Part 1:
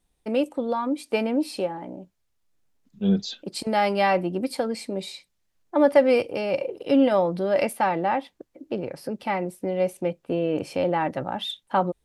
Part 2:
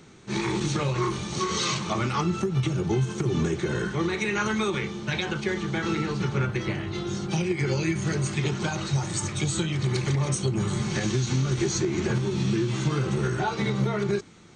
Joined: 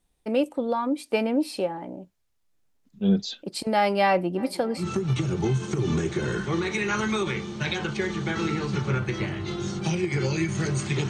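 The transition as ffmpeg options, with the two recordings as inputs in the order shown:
ffmpeg -i cue0.wav -i cue1.wav -filter_complex "[0:a]asplit=3[link_01][link_02][link_03];[link_01]afade=type=out:start_time=4.37:duration=0.02[link_04];[link_02]asplit=2[link_05][link_06];[link_06]adelay=317,lowpass=frequency=2300:poles=1,volume=-18.5dB,asplit=2[link_07][link_08];[link_08]adelay=317,lowpass=frequency=2300:poles=1,volume=0.48,asplit=2[link_09][link_10];[link_10]adelay=317,lowpass=frequency=2300:poles=1,volume=0.48,asplit=2[link_11][link_12];[link_12]adelay=317,lowpass=frequency=2300:poles=1,volume=0.48[link_13];[link_05][link_07][link_09][link_11][link_13]amix=inputs=5:normalize=0,afade=type=in:start_time=4.37:duration=0.02,afade=type=out:start_time=4.86:duration=0.02[link_14];[link_03]afade=type=in:start_time=4.86:duration=0.02[link_15];[link_04][link_14][link_15]amix=inputs=3:normalize=0,apad=whole_dur=11.09,atrim=end=11.09,atrim=end=4.86,asetpts=PTS-STARTPTS[link_16];[1:a]atrim=start=2.23:end=8.56,asetpts=PTS-STARTPTS[link_17];[link_16][link_17]acrossfade=duration=0.1:curve1=tri:curve2=tri" out.wav

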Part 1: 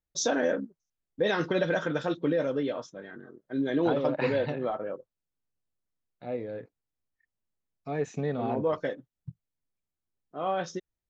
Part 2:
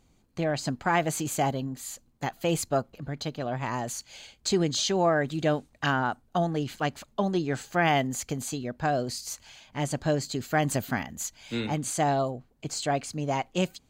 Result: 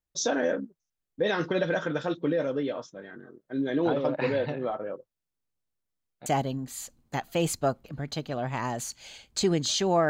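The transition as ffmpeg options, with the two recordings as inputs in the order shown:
ffmpeg -i cue0.wav -i cue1.wav -filter_complex "[0:a]apad=whole_dur=10.09,atrim=end=10.09,atrim=end=6.262[link_01];[1:a]atrim=start=1.348:end=5.18[link_02];[link_01][link_02]acrossfade=duration=0.004:curve1=hsin:curve2=hsin" out.wav

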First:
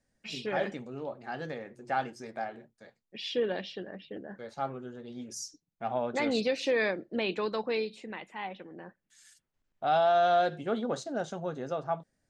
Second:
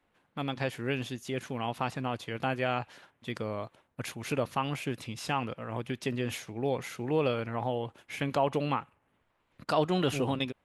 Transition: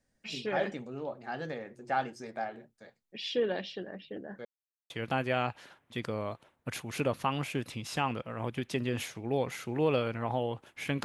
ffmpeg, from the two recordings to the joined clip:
ffmpeg -i cue0.wav -i cue1.wav -filter_complex "[0:a]apad=whole_dur=11.04,atrim=end=11.04,asplit=2[link_01][link_02];[link_01]atrim=end=4.45,asetpts=PTS-STARTPTS,afade=type=out:start_time=4.446:duration=0.004:curve=hsin[link_03];[link_02]atrim=start=4.45:end=4.9,asetpts=PTS-STARTPTS,volume=0[link_04];[1:a]atrim=start=2.22:end=8.36,asetpts=PTS-STARTPTS,afade=type=in:duration=0.004:curve=hsin[link_05];[link_03][link_04][link_05]concat=n=3:v=0:a=1" out.wav

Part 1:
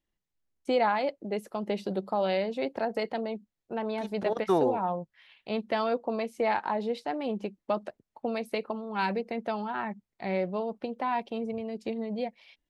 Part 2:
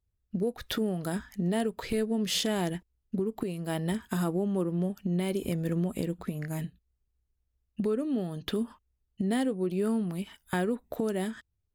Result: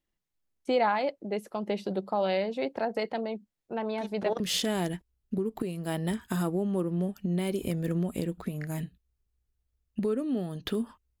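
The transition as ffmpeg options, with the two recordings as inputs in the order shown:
ffmpeg -i cue0.wav -i cue1.wav -filter_complex "[0:a]apad=whole_dur=11.2,atrim=end=11.2,atrim=end=4.402[link_01];[1:a]atrim=start=2.208:end=9.01[link_02];[link_01][link_02]acrossfade=duration=0.004:curve1=hsin:curve2=hsin" out.wav

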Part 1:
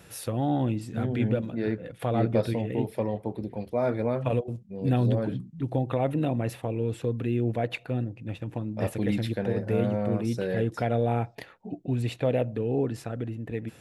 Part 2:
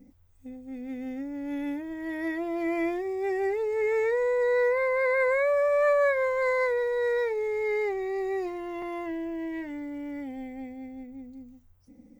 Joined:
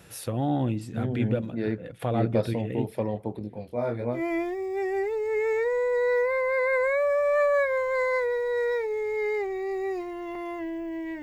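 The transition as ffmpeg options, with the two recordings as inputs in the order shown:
ffmpeg -i cue0.wav -i cue1.wav -filter_complex "[0:a]asettb=1/sr,asplit=3[link_01][link_02][link_03];[link_01]atrim=end=3.394[link_04];[link_02]atrim=start=3.39:end=4.23,asetpts=PTS-STARTPTS,afade=type=in:duration=0.004:curve=qsin,afade=type=out:start_time=0.836:duration=0.004:curve=qsin,flanger=delay=19:depth=6.9:speed=0.89[link_05];[link_03]atrim=start=4.226[link_06];[link_04][link_05]acrossfade=duration=0.004:curve1=hsin:curve2=qsin[link_07];[link_07][link_06]acrossfade=duration=0.004:curve1=qsin:curve2=hsin,apad=whole_dur=11.22,atrim=end=11.22,atrim=end=4.23,asetpts=PTS-STARTPTS[link_08];[1:a]atrim=start=2.56:end=9.69,asetpts=PTS-STARTPTS[link_09];[link_08][link_09]acrossfade=duration=0.14:curve1=tri:curve2=tri" out.wav

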